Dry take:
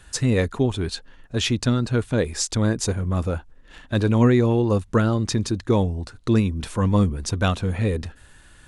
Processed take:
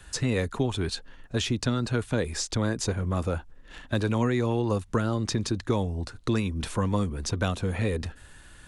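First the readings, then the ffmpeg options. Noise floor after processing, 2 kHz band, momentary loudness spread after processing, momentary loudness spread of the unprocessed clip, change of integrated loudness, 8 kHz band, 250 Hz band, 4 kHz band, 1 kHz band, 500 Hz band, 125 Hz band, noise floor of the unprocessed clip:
-51 dBFS, -3.5 dB, 7 LU, 10 LU, -6.0 dB, -5.0 dB, -6.5 dB, -4.0 dB, -4.0 dB, -5.5 dB, -6.5 dB, -50 dBFS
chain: -filter_complex "[0:a]acrossover=split=270|610|6200[s0][s1][s2][s3];[s0]acompressor=threshold=0.0447:ratio=4[s4];[s1]acompressor=threshold=0.0282:ratio=4[s5];[s2]acompressor=threshold=0.0282:ratio=4[s6];[s3]acompressor=threshold=0.01:ratio=4[s7];[s4][s5][s6][s7]amix=inputs=4:normalize=0"

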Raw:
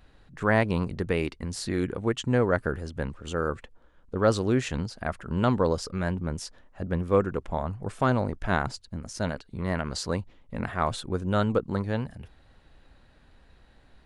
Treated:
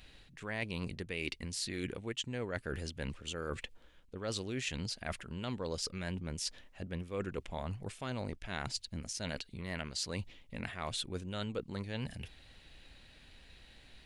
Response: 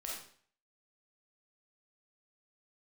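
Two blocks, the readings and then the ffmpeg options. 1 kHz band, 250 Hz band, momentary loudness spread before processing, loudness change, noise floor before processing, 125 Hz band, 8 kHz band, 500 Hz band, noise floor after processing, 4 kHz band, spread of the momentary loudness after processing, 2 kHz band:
-15.5 dB, -13.0 dB, 11 LU, -11.5 dB, -58 dBFS, -12.0 dB, -1.5 dB, -14.5 dB, -60 dBFS, -1.0 dB, 19 LU, -9.5 dB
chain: -af "highshelf=f=1800:t=q:w=1.5:g=9.5,areverse,acompressor=threshold=0.0224:ratio=6,areverse,volume=0.75"

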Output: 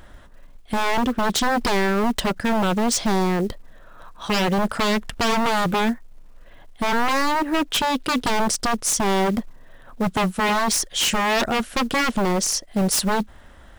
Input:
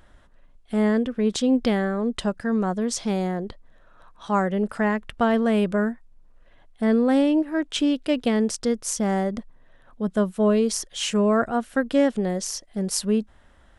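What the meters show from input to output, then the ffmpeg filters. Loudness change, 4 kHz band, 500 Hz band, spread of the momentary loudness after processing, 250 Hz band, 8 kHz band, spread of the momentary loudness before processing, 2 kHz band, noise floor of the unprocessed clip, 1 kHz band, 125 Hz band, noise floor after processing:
+2.0 dB, +8.0 dB, -1.0 dB, 5 LU, -2.0 dB, +7.0 dB, 8 LU, +8.0 dB, -54 dBFS, +8.0 dB, +2.0 dB, -45 dBFS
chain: -af "aeval=exprs='0.0668*(abs(mod(val(0)/0.0668+3,4)-2)-1)':c=same,acrusher=bits=7:mode=log:mix=0:aa=0.000001,volume=2.66"

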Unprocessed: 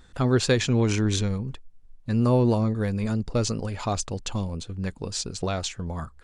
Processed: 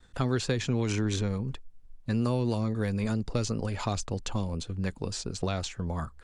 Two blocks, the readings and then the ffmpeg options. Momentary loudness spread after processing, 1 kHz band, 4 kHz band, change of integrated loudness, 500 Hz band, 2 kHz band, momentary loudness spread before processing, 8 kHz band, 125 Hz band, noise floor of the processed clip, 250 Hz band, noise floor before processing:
6 LU, -4.5 dB, -5.5 dB, -5.0 dB, -6.0 dB, -4.5 dB, 11 LU, -6.5 dB, -4.5 dB, -52 dBFS, -5.0 dB, -52 dBFS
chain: -filter_complex "[0:a]agate=range=0.0224:threshold=0.00398:ratio=3:detection=peak,acrossover=split=270|1900[s0][s1][s2];[s0]acompressor=threshold=0.0398:ratio=4[s3];[s1]acompressor=threshold=0.0282:ratio=4[s4];[s2]acompressor=threshold=0.0158:ratio=4[s5];[s3][s4][s5]amix=inputs=3:normalize=0"

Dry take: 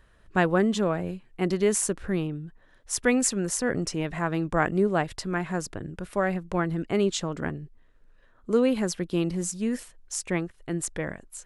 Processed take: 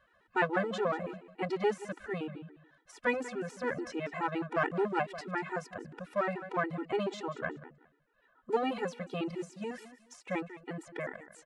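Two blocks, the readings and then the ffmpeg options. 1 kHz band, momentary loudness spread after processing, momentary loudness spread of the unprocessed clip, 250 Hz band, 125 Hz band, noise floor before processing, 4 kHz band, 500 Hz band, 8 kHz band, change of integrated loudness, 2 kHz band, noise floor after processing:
-3.0 dB, 11 LU, 11 LU, -11.5 dB, -12.5 dB, -59 dBFS, -10.0 dB, -6.5 dB, -24.0 dB, -8.0 dB, -4.5 dB, -70 dBFS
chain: -filter_complex "[0:a]deesser=0.7,acrossover=split=1600[s0][s1];[s0]aeval=exprs='clip(val(0),-1,0.0501)':c=same[s2];[s2][s1]amix=inputs=2:normalize=0,bandpass=f=1100:t=q:w=0.56:csg=0,aecho=1:1:191|382:0.188|0.0414,afftfilt=real='re*gt(sin(2*PI*7*pts/sr)*(1-2*mod(floor(b*sr/1024/250),2)),0)':imag='im*gt(sin(2*PI*7*pts/sr)*(1-2*mod(floor(b*sr/1024/250),2)),0)':win_size=1024:overlap=0.75,volume=1.19"

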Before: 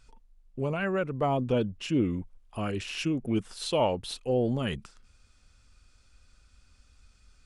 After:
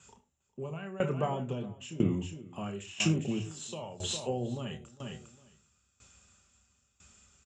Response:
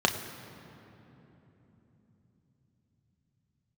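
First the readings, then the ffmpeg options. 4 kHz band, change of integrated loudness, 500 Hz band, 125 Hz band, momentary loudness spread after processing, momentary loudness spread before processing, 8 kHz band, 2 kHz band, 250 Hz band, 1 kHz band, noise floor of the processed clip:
-2.0 dB, -5.0 dB, -7.5 dB, -2.0 dB, 14 LU, 8 LU, +4.5 dB, -5.0 dB, -4.5 dB, -7.0 dB, -76 dBFS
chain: -filter_complex "[0:a]lowpass=f=7300:t=q:w=7.5,bandreject=f=4400:w=11,acrossover=split=130[s0][s1];[s1]acompressor=threshold=0.0316:ratio=6[s2];[s0][s2]amix=inputs=2:normalize=0,asplit=2[s3][s4];[s4]adelay=25,volume=0.237[s5];[s3][s5]amix=inputs=2:normalize=0,aecho=1:1:405|810:0.2|0.0419[s6];[1:a]atrim=start_sample=2205,afade=t=out:st=0.16:d=0.01,atrim=end_sample=7497[s7];[s6][s7]afir=irnorm=-1:irlink=0,aeval=exprs='val(0)*pow(10,-19*if(lt(mod(1*n/s,1),2*abs(1)/1000),1-mod(1*n/s,1)/(2*abs(1)/1000),(mod(1*n/s,1)-2*abs(1)/1000)/(1-2*abs(1)/1000))/20)':c=same,volume=0.473"

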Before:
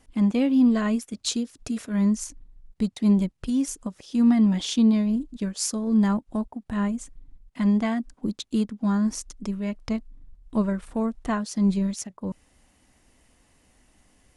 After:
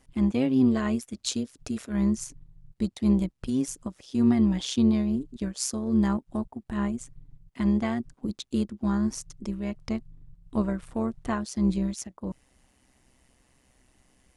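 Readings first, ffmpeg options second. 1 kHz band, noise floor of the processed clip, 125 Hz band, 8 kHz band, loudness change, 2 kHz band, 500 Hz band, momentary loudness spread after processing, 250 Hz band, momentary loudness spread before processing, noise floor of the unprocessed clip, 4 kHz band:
-2.5 dB, -68 dBFS, -1.5 dB, -3.0 dB, -3.0 dB, -3.0 dB, -1.0 dB, 12 LU, -3.0 dB, 12 LU, -65 dBFS, -3.0 dB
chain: -af "tremolo=f=130:d=0.621"

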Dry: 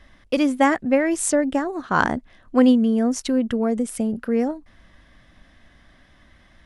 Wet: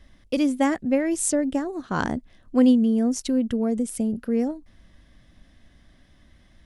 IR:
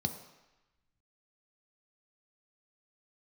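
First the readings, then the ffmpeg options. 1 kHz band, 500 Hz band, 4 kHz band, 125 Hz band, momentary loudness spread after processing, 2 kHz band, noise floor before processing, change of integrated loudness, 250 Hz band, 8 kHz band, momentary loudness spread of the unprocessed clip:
-7.5 dB, -4.5 dB, -3.5 dB, -1.0 dB, 11 LU, -8.0 dB, -55 dBFS, -2.5 dB, -1.5 dB, -1.0 dB, 9 LU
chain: -af "equalizer=f=1300:w=0.5:g=-9"

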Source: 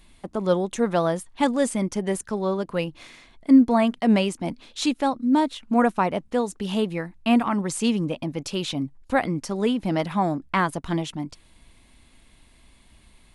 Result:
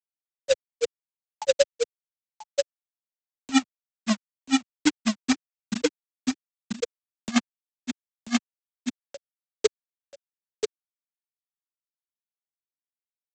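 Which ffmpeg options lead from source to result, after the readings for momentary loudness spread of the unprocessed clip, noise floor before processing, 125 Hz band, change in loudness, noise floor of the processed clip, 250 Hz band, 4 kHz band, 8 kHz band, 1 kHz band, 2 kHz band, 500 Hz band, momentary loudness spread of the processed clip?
9 LU, -56 dBFS, -16.5 dB, -5.0 dB, under -85 dBFS, -7.5 dB, -0.5 dB, +1.0 dB, -13.0 dB, -4.0 dB, -4.0 dB, 13 LU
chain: -filter_complex "[0:a]adynamicequalizer=threshold=0.0141:dfrequency=290:dqfactor=4.2:tfrequency=290:tqfactor=4.2:attack=5:release=100:ratio=0.375:range=3.5:mode=cutabove:tftype=bell,afftfilt=real='re*gte(hypot(re,im),1.26)':imag='im*gte(hypot(re,im),1.26)':win_size=1024:overlap=0.75,aresample=16000,acrusher=bits=3:mode=log:mix=0:aa=0.000001,aresample=44100,acompressor=mode=upward:threshold=0.0251:ratio=2.5,aecho=1:1:986:0.501,asplit=2[s0][s1];[s1]alimiter=limit=0.158:level=0:latency=1:release=447,volume=0.708[s2];[s0][s2]amix=inputs=2:normalize=0,acrossover=split=120|500|1600|3300[s3][s4][s5][s6][s7];[s3]acompressor=threshold=0.00398:ratio=4[s8];[s4]acompressor=threshold=0.0398:ratio=4[s9];[s5]acompressor=threshold=0.0398:ratio=4[s10];[s6]acompressor=threshold=0.01:ratio=4[s11];[s7]acompressor=threshold=0.00562:ratio=4[s12];[s8][s9][s10][s11][s12]amix=inputs=5:normalize=0,highshelf=f=2500:g=11,aeval=exprs='val(0)*pow(10,-24*(0.5-0.5*cos(2*PI*9.2*n/s))/20)':c=same,volume=2.24"

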